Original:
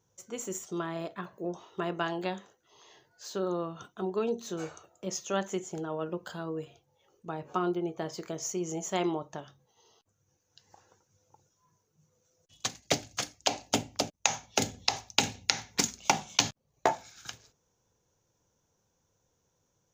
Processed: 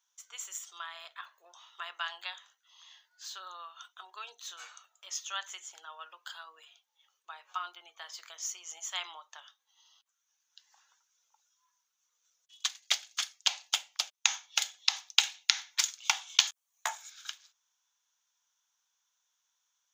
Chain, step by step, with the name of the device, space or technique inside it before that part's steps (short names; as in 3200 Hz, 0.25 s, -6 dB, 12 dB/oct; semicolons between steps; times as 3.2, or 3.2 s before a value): 16.47–17.1 resonant high shelf 6000 Hz +8.5 dB, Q 1.5; headphones lying on a table (HPF 1100 Hz 24 dB/oct; bell 3400 Hz +7.5 dB 0.44 oct); gain -1 dB